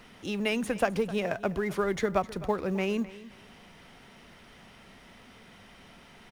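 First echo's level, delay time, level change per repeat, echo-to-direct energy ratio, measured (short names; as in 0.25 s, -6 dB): -17.5 dB, 0.259 s, -12.0 dB, -17.5 dB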